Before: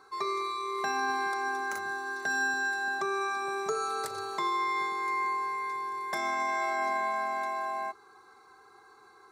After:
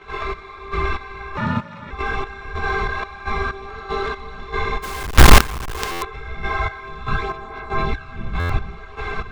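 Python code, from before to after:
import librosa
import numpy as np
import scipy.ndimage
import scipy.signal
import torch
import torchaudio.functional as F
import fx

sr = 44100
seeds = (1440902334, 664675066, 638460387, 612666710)

p1 = fx.bin_compress(x, sr, power=0.2)
p2 = fx.dmg_wind(p1, sr, seeds[0], corner_hz=94.0, level_db=-24.0)
p3 = fx.lowpass_res(p2, sr, hz=2900.0, q=4.8)
p4 = p3 + fx.echo_alternate(p3, sr, ms=363, hz=1200.0, feedback_pct=76, wet_db=-2.5, dry=0)
p5 = fx.step_gate(p4, sr, bpm=189, pattern='.xxx....', floor_db=-12.0, edge_ms=4.5)
p6 = fx.chorus_voices(p5, sr, voices=6, hz=1.1, base_ms=15, depth_ms=3.0, mix_pct=65)
p7 = fx.ring_mod(p6, sr, carrier_hz=170.0, at=(1.37, 1.91))
p8 = fx.quant_companded(p7, sr, bits=2, at=(4.82, 6.01), fade=0.02)
p9 = fx.buffer_glitch(p8, sr, at_s=(5.91, 8.39), block=512, repeats=8)
p10 = fx.env_flatten(p9, sr, amount_pct=70, at=(2.55, 3.04))
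y = p10 * librosa.db_to_amplitude(-1.0)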